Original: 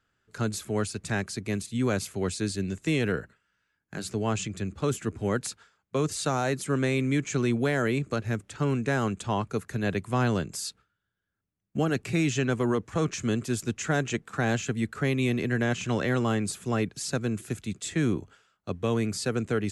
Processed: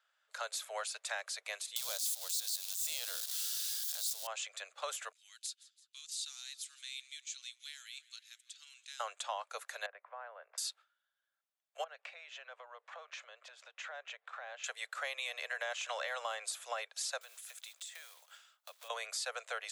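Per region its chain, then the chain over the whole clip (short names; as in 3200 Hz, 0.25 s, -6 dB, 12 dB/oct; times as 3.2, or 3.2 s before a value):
1.76–4.27 switching spikes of -22.5 dBFS + resonant high shelf 3000 Hz +11 dB, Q 1.5 + transient shaper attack -11 dB, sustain -1 dB
5.12–9 ladder high-pass 2900 Hz, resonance 25% + frequency-shifting echo 0.167 s, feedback 63%, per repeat -42 Hz, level -20 dB
9.86–10.58 LPF 1900 Hz 24 dB/oct + compressor, threshold -38 dBFS
11.84–14.64 LPF 2900 Hz + compressor 5:1, threshold -39 dBFS
17.21–18.9 block floating point 5-bit + tilt +2.5 dB/oct + compressor, threshold -44 dBFS
whole clip: steep high-pass 540 Hz 72 dB/oct; bell 3600 Hz +5.5 dB 0.37 oct; compressor, threshold -33 dBFS; gain -2 dB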